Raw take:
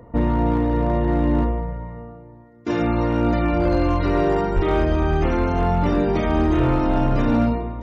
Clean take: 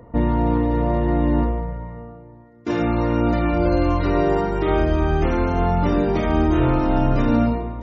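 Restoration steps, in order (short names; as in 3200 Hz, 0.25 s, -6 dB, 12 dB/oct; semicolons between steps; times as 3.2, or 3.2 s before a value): clip repair -12.5 dBFS; de-plosive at 4.55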